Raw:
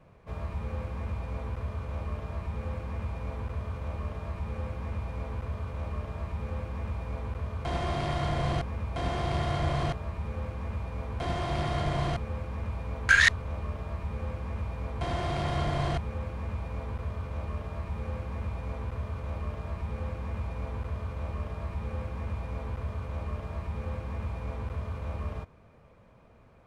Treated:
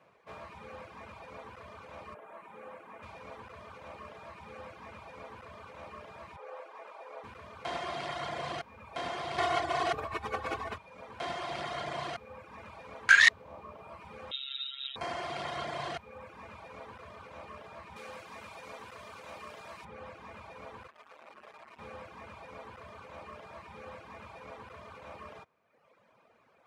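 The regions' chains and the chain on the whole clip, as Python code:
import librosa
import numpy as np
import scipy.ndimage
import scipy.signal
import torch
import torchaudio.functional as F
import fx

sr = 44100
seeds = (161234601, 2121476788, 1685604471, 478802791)

y = fx.chain(x, sr, fx.highpass(hz=220.0, slope=12),
    fx.peak_eq(hz=4900.0, db=-13.0, octaves=1.3), at=(2.14, 3.03))
y = fx.chain(y, sr, fx.highpass(hz=440.0, slope=24),
    fx.tilt_shelf(db=5.5, hz=1200.0), at=(6.36, 7.24))
y = fx.chain(y, sr, fx.hum_notches(base_hz=50, count=10),
    fx.comb(ms=2.7, depth=0.71),
    fx.env_flatten(amount_pct=100), at=(9.38, 10.78))
y = fx.chain(y, sr, fx.robotise(hz=135.0),
    fx.freq_invert(carrier_hz=3800), at=(14.31, 14.96))
y = fx.chain(y, sr, fx.highpass(hz=120.0, slope=6),
    fx.high_shelf(hz=3600.0, db=12.0), at=(17.96, 19.85))
y = fx.chain(y, sr, fx.highpass(hz=520.0, slope=6),
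    fx.transformer_sat(knee_hz=800.0), at=(20.87, 21.79))
y = fx.dereverb_blind(y, sr, rt60_s=1.1)
y = fx.weighting(y, sr, curve='A')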